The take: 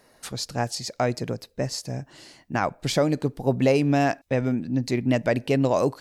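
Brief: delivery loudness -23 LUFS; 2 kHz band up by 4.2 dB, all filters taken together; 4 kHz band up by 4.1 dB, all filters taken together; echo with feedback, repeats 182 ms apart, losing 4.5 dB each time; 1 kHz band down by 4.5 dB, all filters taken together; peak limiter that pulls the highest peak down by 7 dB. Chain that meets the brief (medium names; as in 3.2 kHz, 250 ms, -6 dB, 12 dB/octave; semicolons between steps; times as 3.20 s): peaking EQ 1 kHz -9 dB; peaking EQ 2 kHz +7 dB; peaking EQ 4 kHz +4 dB; peak limiter -15.5 dBFS; feedback delay 182 ms, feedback 60%, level -4.5 dB; trim +3 dB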